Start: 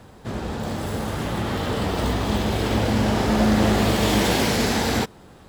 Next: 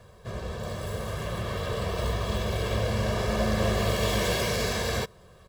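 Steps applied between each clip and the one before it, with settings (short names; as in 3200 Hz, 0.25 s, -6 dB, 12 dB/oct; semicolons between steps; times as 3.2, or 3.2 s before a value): comb 1.8 ms, depth 86%; gain -8 dB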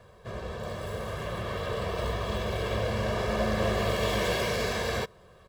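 tone controls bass -4 dB, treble -6 dB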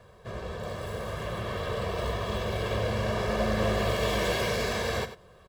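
echo 94 ms -12.5 dB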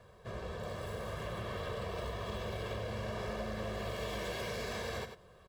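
compressor, threshold -31 dBFS, peak gain reduction 8.5 dB; gain -4.5 dB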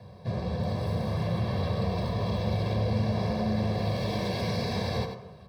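reverb RT60 1.0 s, pre-delay 3 ms, DRR 6 dB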